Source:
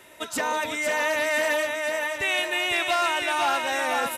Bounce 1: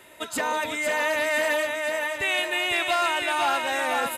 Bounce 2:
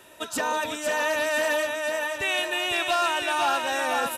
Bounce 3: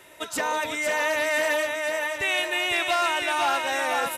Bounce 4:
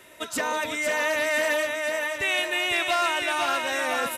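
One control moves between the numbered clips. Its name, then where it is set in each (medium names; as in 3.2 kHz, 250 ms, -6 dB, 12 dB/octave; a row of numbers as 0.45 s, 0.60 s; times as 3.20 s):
band-stop, frequency: 5.7 kHz, 2.1 kHz, 240 Hz, 840 Hz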